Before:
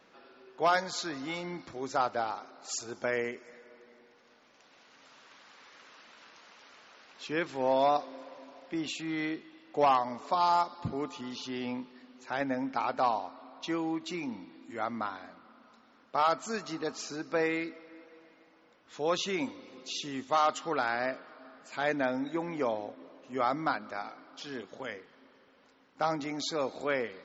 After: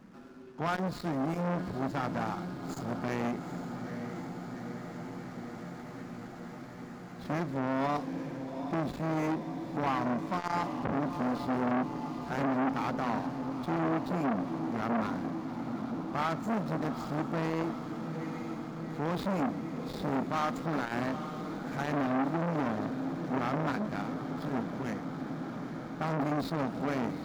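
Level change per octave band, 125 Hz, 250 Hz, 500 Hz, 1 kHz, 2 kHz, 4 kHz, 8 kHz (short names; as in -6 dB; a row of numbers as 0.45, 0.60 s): +11.5 dB, +6.0 dB, -2.5 dB, -3.0 dB, -2.5 dB, -7.5 dB, n/a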